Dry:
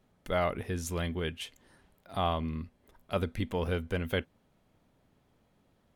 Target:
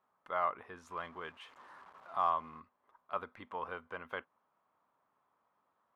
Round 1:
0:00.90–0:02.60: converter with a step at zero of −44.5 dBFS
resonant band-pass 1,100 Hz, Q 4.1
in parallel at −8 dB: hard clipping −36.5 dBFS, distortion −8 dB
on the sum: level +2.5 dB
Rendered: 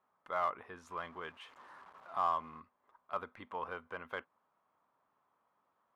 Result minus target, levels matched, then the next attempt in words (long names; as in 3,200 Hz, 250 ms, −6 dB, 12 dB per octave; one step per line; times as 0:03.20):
hard clipping: distortion +22 dB
0:00.90–0:02.60: converter with a step at zero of −44.5 dBFS
resonant band-pass 1,100 Hz, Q 4.1
in parallel at −8 dB: hard clipping −26.5 dBFS, distortion −30 dB
on the sum: level +2.5 dB